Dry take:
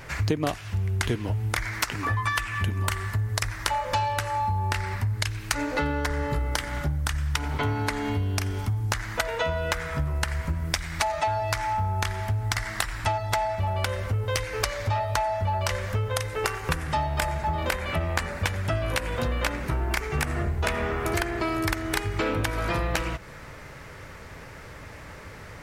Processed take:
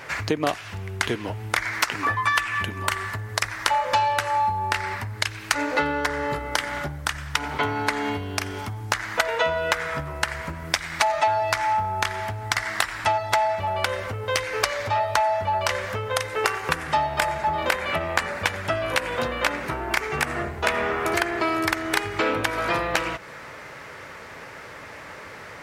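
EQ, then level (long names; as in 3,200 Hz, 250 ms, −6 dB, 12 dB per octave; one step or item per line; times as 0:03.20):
high-pass filter 480 Hz 6 dB per octave
high-shelf EQ 5,200 Hz −7 dB
+6.5 dB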